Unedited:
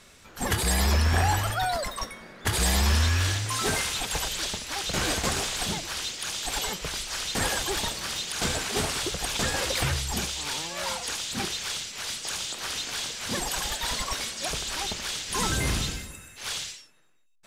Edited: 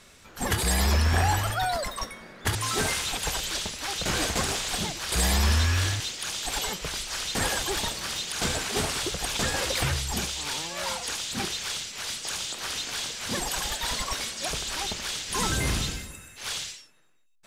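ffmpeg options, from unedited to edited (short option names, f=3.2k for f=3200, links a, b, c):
-filter_complex "[0:a]asplit=4[a][b][c][d];[a]atrim=end=2.552[e];[b]atrim=start=3.428:end=6.002[f];[c]atrim=start=2.548:end=3.432[g];[d]atrim=start=5.998[h];[e][f]acrossfade=d=0.004:c1=hsin:c2=hsin[i];[i][g]acrossfade=d=0.004:c1=hsin:c2=hsin[j];[j][h]acrossfade=d=0.004:c1=hsin:c2=hsin"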